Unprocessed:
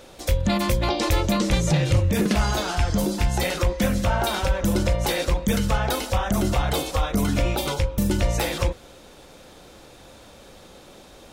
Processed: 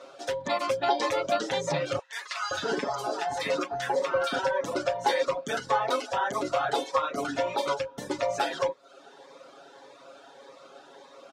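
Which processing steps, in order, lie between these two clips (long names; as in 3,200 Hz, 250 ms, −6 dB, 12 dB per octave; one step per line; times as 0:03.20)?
high-pass filter 520 Hz 12 dB per octave
reverb reduction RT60 0.59 s
low-pass filter 5,200 Hz 12 dB per octave
high shelf with overshoot 1,800 Hz −6.5 dB, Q 1.5
comb filter 7.3 ms, depth 85%
0:01.99–0:04.39: multiband delay without the direct sound highs, lows 520 ms, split 1,100 Hz
phaser whose notches keep moving one way rising 1.7 Hz
level +2.5 dB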